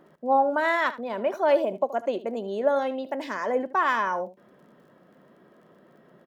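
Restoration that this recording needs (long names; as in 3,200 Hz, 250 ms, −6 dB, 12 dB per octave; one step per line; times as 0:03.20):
click removal
echo removal 75 ms −15.5 dB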